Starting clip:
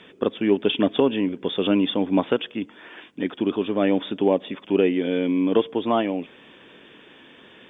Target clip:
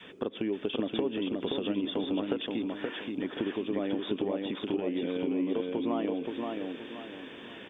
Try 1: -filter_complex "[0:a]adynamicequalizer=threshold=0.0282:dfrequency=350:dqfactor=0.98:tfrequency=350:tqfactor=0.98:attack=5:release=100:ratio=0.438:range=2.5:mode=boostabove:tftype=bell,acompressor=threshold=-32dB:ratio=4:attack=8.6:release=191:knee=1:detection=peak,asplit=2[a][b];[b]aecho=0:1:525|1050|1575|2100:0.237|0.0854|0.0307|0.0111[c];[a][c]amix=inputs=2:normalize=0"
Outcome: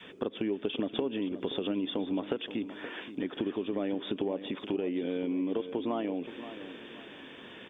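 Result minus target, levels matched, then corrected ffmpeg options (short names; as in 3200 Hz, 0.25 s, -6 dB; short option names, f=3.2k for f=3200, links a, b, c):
echo-to-direct -9 dB
-filter_complex "[0:a]adynamicequalizer=threshold=0.0282:dfrequency=350:dqfactor=0.98:tfrequency=350:tqfactor=0.98:attack=5:release=100:ratio=0.438:range=2.5:mode=boostabove:tftype=bell,acompressor=threshold=-32dB:ratio=4:attack=8.6:release=191:knee=1:detection=peak,asplit=2[a][b];[b]aecho=0:1:525|1050|1575|2100|2625:0.668|0.241|0.0866|0.0312|0.0112[c];[a][c]amix=inputs=2:normalize=0"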